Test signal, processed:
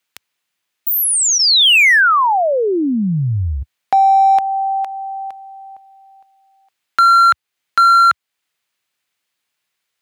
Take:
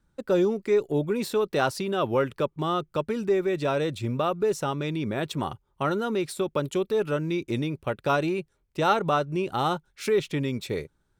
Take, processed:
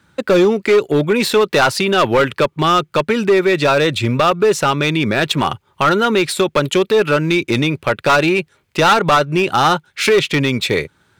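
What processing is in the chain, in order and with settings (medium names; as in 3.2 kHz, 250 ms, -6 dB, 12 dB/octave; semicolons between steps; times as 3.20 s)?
high-pass 77 Hz 24 dB/octave; peaking EQ 2.4 kHz +9.5 dB 2.4 oct; band-stop 5.6 kHz, Q 28; in parallel at +1 dB: compression 4:1, threshold -36 dBFS; on the sum: hard clipper -16 dBFS; trim +8.5 dB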